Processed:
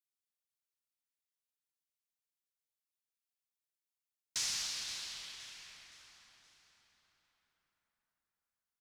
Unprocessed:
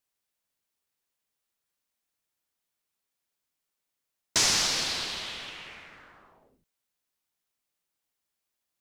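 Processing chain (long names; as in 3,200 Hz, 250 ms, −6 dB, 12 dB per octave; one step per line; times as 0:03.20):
guitar amp tone stack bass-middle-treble 5-5-5
repeating echo 520 ms, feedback 41%, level −13.5 dB
convolution reverb RT60 5.4 s, pre-delay 108 ms, DRR 8 dB
level −5.5 dB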